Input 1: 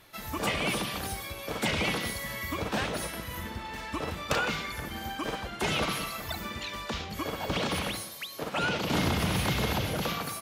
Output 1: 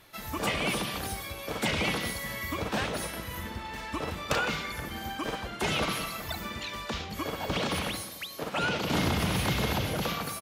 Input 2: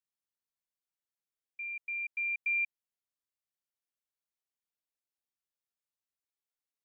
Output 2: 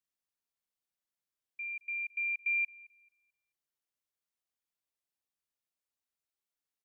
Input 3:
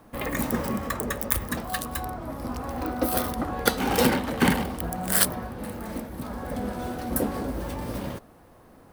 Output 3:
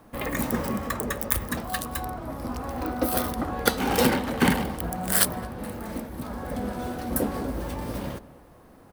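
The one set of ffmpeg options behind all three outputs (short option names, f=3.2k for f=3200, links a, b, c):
-filter_complex "[0:a]asplit=2[a][b];[b]adelay=219,lowpass=f=1.6k:p=1,volume=-18dB,asplit=2[c][d];[d]adelay=219,lowpass=f=1.6k:p=1,volume=0.43,asplit=2[e][f];[f]adelay=219,lowpass=f=1.6k:p=1,volume=0.43,asplit=2[g][h];[h]adelay=219,lowpass=f=1.6k:p=1,volume=0.43[i];[a][c][e][g][i]amix=inputs=5:normalize=0"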